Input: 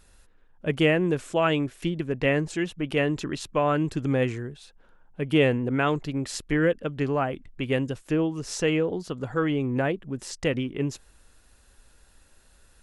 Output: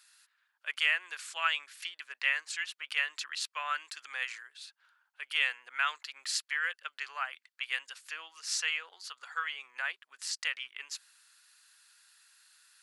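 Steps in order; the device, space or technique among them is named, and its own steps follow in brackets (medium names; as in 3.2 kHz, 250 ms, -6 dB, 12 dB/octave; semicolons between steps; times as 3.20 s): headphones lying on a table (high-pass 1.3 kHz 24 dB/octave; peaking EQ 4.5 kHz +6.5 dB 0.29 oct)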